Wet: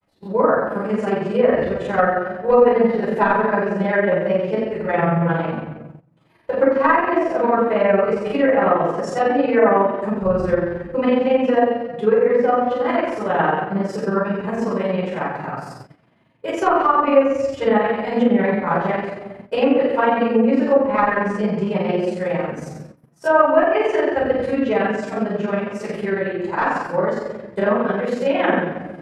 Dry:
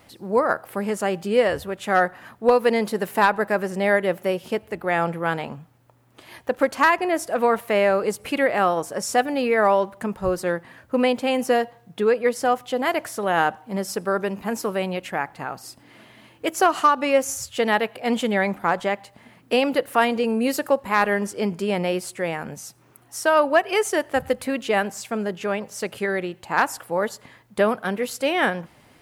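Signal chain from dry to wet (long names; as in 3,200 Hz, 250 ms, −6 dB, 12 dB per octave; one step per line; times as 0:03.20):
rectangular room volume 620 cubic metres, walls mixed, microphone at 4.9 metres
granular cloud 78 ms, grains 22 per second, spray 17 ms, pitch spread up and down by 0 semitones
treble cut that deepens with the level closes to 2,200 Hz, closed at −5.5 dBFS
high-shelf EQ 2,700 Hz −10.5 dB
noise gate −33 dBFS, range −15 dB
level −5 dB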